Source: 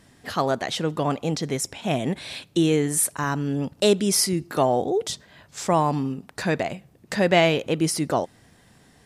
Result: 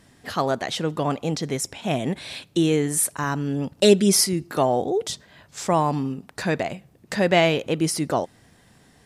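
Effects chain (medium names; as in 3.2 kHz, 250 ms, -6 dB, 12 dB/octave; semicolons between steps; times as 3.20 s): 3.81–4.24 s: comb 5.3 ms, depth 83%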